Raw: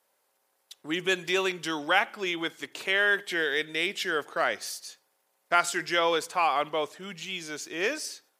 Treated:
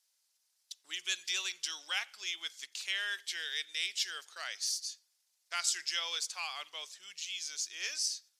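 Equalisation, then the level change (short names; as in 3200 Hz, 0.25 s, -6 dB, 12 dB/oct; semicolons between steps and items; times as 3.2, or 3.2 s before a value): band-pass 5400 Hz, Q 1.7; tilt +2 dB/oct; 0.0 dB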